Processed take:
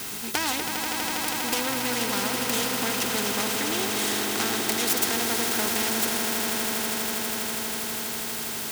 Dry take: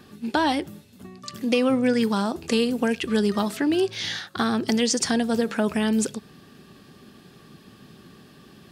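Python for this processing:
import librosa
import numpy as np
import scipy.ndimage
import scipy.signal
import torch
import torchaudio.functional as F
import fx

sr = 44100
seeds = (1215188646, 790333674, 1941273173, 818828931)

p1 = fx.self_delay(x, sr, depth_ms=0.35)
p2 = fx.low_shelf(p1, sr, hz=210.0, db=-8.0)
p3 = fx.quant_dither(p2, sr, seeds[0], bits=6, dither='triangular')
p4 = p2 + (p3 * 10.0 ** (-6.0 / 20.0))
p5 = fx.notch_comb(p4, sr, f0_hz=580.0)
p6 = p5 + fx.echo_swell(p5, sr, ms=81, loudest=8, wet_db=-11, dry=0)
y = fx.spectral_comp(p6, sr, ratio=2.0)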